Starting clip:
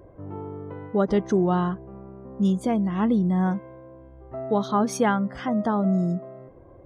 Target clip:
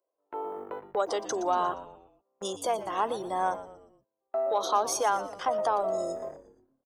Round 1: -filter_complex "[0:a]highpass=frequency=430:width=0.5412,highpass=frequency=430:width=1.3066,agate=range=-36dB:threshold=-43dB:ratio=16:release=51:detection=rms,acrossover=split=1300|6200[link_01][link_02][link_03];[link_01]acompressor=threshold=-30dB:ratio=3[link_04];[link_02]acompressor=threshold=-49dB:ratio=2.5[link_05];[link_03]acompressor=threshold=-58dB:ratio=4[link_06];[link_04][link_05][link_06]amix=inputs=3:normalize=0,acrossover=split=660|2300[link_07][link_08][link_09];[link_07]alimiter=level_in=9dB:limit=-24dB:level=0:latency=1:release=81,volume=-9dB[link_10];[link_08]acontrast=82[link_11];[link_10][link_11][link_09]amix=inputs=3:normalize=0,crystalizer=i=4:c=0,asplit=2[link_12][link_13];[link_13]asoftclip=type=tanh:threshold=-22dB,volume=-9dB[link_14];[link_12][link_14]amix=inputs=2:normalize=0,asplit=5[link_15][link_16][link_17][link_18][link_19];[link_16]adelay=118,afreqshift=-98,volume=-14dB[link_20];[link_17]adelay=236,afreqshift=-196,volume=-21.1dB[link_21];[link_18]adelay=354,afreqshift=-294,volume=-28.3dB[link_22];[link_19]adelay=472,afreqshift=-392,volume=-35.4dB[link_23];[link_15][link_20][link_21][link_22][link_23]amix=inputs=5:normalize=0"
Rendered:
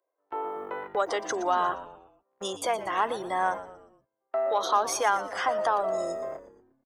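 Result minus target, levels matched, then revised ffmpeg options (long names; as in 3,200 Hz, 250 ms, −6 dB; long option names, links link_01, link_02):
2,000 Hz band +6.5 dB
-filter_complex "[0:a]highpass=frequency=430:width=0.5412,highpass=frequency=430:width=1.3066,equalizer=frequency=2000:width=1.1:gain=-13.5,agate=range=-36dB:threshold=-43dB:ratio=16:release=51:detection=rms,acrossover=split=1300|6200[link_01][link_02][link_03];[link_01]acompressor=threshold=-30dB:ratio=3[link_04];[link_02]acompressor=threshold=-49dB:ratio=2.5[link_05];[link_03]acompressor=threshold=-58dB:ratio=4[link_06];[link_04][link_05][link_06]amix=inputs=3:normalize=0,acrossover=split=660|2300[link_07][link_08][link_09];[link_07]alimiter=level_in=9dB:limit=-24dB:level=0:latency=1:release=81,volume=-9dB[link_10];[link_08]acontrast=82[link_11];[link_10][link_11][link_09]amix=inputs=3:normalize=0,crystalizer=i=4:c=0,asplit=2[link_12][link_13];[link_13]asoftclip=type=tanh:threshold=-22dB,volume=-9dB[link_14];[link_12][link_14]amix=inputs=2:normalize=0,asplit=5[link_15][link_16][link_17][link_18][link_19];[link_16]adelay=118,afreqshift=-98,volume=-14dB[link_20];[link_17]adelay=236,afreqshift=-196,volume=-21.1dB[link_21];[link_18]adelay=354,afreqshift=-294,volume=-28.3dB[link_22];[link_19]adelay=472,afreqshift=-392,volume=-35.4dB[link_23];[link_15][link_20][link_21][link_22][link_23]amix=inputs=5:normalize=0"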